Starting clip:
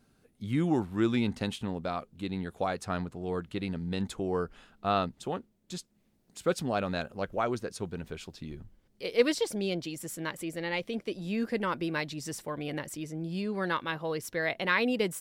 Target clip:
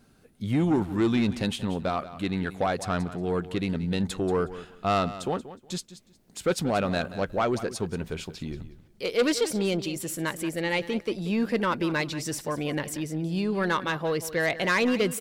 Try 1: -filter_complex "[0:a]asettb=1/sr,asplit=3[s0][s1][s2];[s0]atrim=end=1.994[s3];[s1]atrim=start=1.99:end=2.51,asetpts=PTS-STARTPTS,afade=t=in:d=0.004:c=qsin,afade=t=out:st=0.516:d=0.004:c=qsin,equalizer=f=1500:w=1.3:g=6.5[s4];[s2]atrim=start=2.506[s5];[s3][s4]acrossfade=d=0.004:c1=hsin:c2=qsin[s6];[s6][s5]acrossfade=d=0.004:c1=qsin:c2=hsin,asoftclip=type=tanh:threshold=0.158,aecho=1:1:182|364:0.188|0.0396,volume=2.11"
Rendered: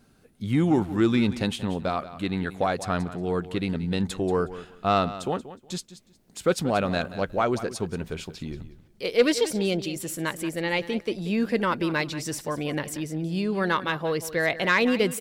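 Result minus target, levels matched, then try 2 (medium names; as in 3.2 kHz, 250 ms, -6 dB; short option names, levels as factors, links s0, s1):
saturation: distortion -9 dB
-filter_complex "[0:a]asettb=1/sr,asplit=3[s0][s1][s2];[s0]atrim=end=1.994[s3];[s1]atrim=start=1.99:end=2.51,asetpts=PTS-STARTPTS,afade=t=in:d=0.004:c=qsin,afade=t=out:st=0.516:d=0.004:c=qsin,equalizer=f=1500:w=1.3:g=6.5[s4];[s2]atrim=start=2.506[s5];[s3][s4]acrossfade=d=0.004:c1=hsin:c2=qsin[s6];[s6][s5]acrossfade=d=0.004:c1=qsin:c2=hsin,asoftclip=type=tanh:threshold=0.0668,aecho=1:1:182|364:0.188|0.0396,volume=2.11"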